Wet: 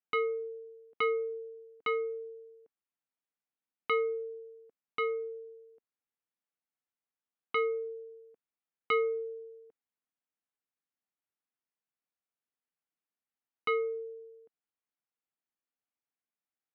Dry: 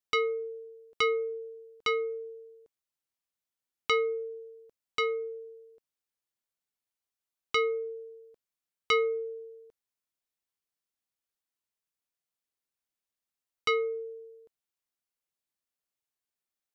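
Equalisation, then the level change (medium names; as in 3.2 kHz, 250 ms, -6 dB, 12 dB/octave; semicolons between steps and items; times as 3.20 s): cabinet simulation 330–3100 Hz, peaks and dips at 380 Hz -9 dB, 580 Hz -8 dB, 1 kHz -3 dB; tilt EQ -3.5 dB/octave; 0.0 dB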